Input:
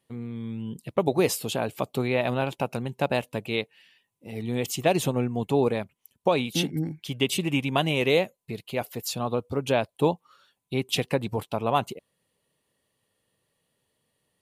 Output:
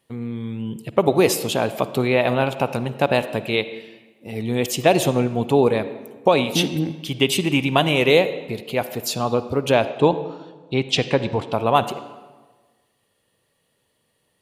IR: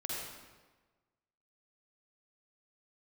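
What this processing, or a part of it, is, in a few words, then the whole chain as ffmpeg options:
filtered reverb send: -filter_complex "[0:a]asplit=2[link_01][link_02];[link_02]highpass=frequency=150:width=0.5412,highpass=frequency=150:width=1.3066,lowpass=6300[link_03];[1:a]atrim=start_sample=2205[link_04];[link_03][link_04]afir=irnorm=-1:irlink=0,volume=-12dB[link_05];[link_01][link_05]amix=inputs=2:normalize=0,asettb=1/sr,asplit=3[link_06][link_07][link_08];[link_06]atrim=end=9.904[link_09];[link_07]atrim=start=9.9:end=11.53,asetpts=PTS-STARTPTS,afade=type=in:duration=0.004:curve=qsin,afade=type=out:start_time=1.626:duration=0.004:curve=qsin,lowpass=frequency=7000:width=0.5412,lowpass=frequency=7000:width=1.3066[link_10];[link_08]atrim=start=11.526[link_11];[link_09][link_10]acrossfade=duration=0.004:curve1=hsin:curve2=qsin[link_12];[link_12][link_11]acrossfade=duration=0.004:curve1=qsin:curve2=hsin,volume=5.5dB"

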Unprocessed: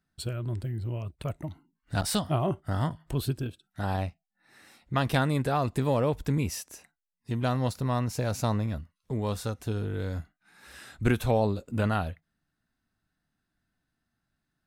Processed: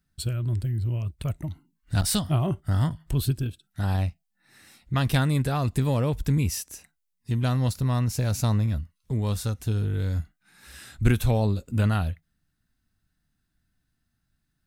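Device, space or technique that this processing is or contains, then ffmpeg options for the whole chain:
smiley-face EQ: -af "lowshelf=frequency=120:gain=8,equalizer=frequency=650:width_type=o:width=2.6:gain=-6.5,highshelf=frequency=7200:gain=4.5,volume=3dB"

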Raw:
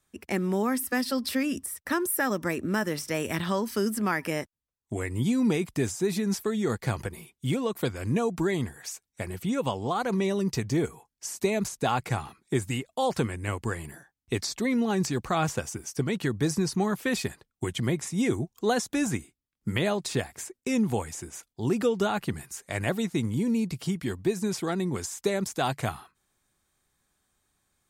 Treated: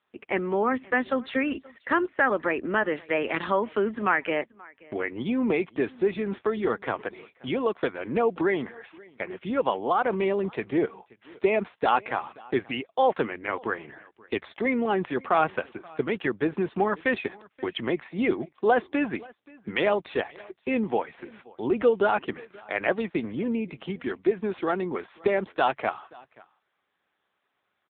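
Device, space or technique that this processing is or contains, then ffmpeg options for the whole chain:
satellite phone: -af "highpass=370,lowpass=3300,aecho=1:1:529:0.0631,volume=6.5dB" -ar 8000 -c:a libopencore_amrnb -b:a 6700

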